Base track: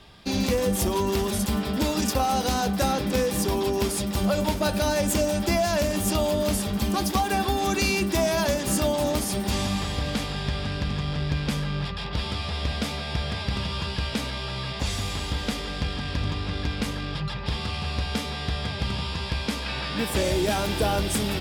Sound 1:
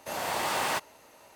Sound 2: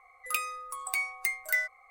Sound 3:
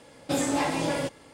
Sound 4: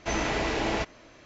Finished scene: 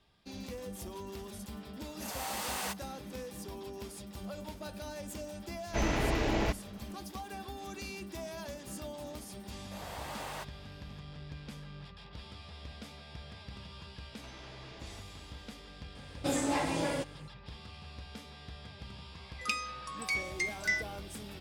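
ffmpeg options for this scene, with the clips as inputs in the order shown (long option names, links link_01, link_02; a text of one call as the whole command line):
ffmpeg -i bed.wav -i cue0.wav -i cue1.wav -i cue2.wav -i cue3.wav -filter_complex "[1:a]asplit=2[link_01][link_02];[4:a]asplit=2[link_03][link_04];[0:a]volume=-19dB[link_05];[link_01]highshelf=frequency=3500:gain=10.5[link_06];[link_03]lowshelf=frequency=260:gain=9[link_07];[link_02]equalizer=frequency=600:width=1.5:gain=3[link_08];[link_04]acompressor=threshold=-40dB:ratio=6:attack=3.2:release=140:knee=1:detection=peak[link_09];[2:a]lowpass=frequency=5400:width_type=q:width=3.4[link_10];[link_06]atrim=end=1.35,asetpts=PTS-STARTPTS,volume=-11.5dB,afade=type=in:duration=0.004:curve=hsin,afade=type=out:start_time=1.346:duration=0.004:curve=hsin,adelay=1940[link_11];[link_07]atrim=end=1.25,asetpts=PTS-STARTPTS,volume=-5.5dB,afade=type=in:duration=0.004:curve=hsin,afade=type=out:start_time=1.246:duration=0.004:curve=hsin,adelay=5680[link_12];[link_08]atrim=end=1.35,asetpts=PTS-STARTPTS,volume=-14dB,afade=type=in:duration=0.004:curve=hsin,afade=type=out:start_time=1.346:duration=0.004:curve=hsin,adelay=9650[link_13];[link_09]atrim=end=1.25,asetpts=PTS-STARTPTS,volume=-10.5dB,afade=type=in:duration=0.004:curve=hsin,afade=type=out:start_time=1.246:duration=0.004:curve=hsin,adelay=14180[link_14];[3:a]atrim=end=1.33,asetpts=PTS-STARTPTS,volume=-5dB,afade=type=in:duration=0.004:curve=hsin,afade=type=out:start_time=1.326:duration=0.004:curve=hsin,adelay=15950[link_15];[link_10]atrim=end=1.9,asetpts=PTS-STARTPTS,volume=-3.5dB,afade=type=in:duration=0.004:curve=hsin,afade=type=out:start_time=1.896:duration=0.004:curve=hsin,adelay=19150[link_16];[link_05][link_11][link_12][link_13][link_14][link_15][link_16]amix=inputs=7:normalize=0" out.wav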